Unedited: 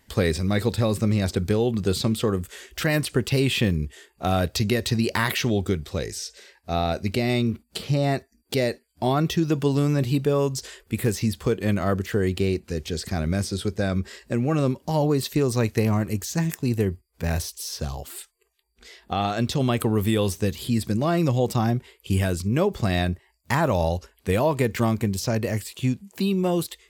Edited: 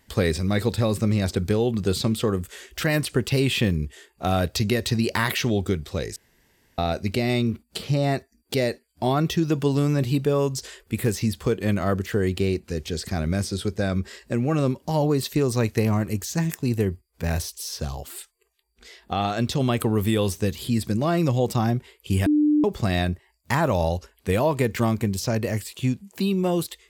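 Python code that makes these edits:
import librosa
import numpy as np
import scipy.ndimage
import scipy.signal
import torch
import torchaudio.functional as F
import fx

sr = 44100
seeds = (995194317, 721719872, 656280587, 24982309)

y = fx.edit(x, sr, fx.room_tone_fill(start_s=6.16, length_s=0.62),
    fx.bleep(start_s=22.26, length_s=0.38, hz=299.0, db=-15.5), tone=tone)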